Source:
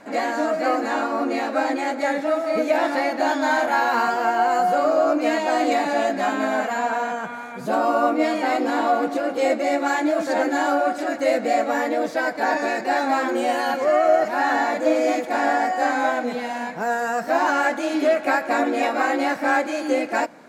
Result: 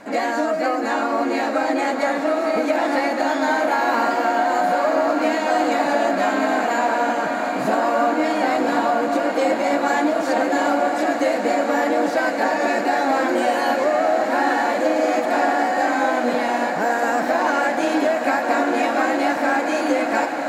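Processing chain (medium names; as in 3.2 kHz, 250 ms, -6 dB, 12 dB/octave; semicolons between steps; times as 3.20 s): compression, threshold -21 dBFS, peak gain reduction 8.5 dB; on a send: echo that smears into a reverb 1111 ms, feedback 77%, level -7 dB; on the sum: trim +4 dB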